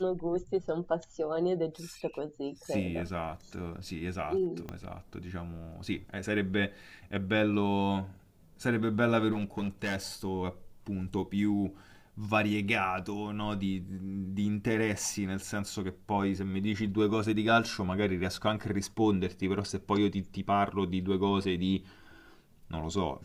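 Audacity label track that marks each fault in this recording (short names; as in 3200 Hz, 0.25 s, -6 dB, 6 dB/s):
4.690000	4.690000	pop -25 dBFS
9.310000	9.960000	clipped -28 dBFS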